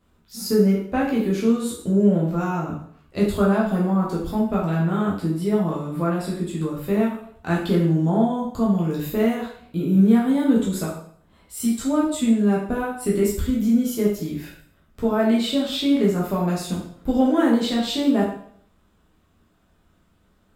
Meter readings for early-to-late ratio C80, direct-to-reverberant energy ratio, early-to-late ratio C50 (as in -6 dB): 7.5 dB, -5.0 dB, 4.0 dB